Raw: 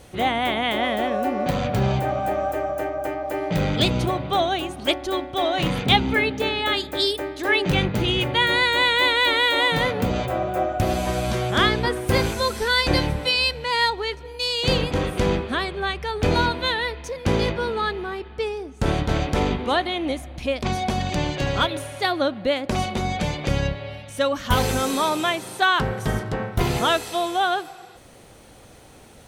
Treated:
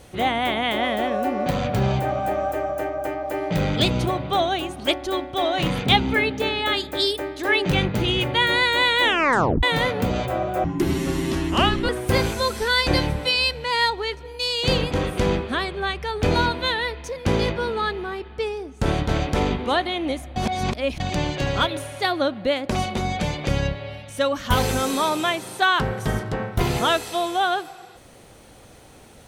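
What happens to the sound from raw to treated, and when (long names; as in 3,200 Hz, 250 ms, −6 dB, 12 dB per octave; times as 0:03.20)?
0:09.01: tape stop 0.62 s
0:10.64–0:11.89: frequency shifter −450 Hz
0:20.36–0:21.00: reverse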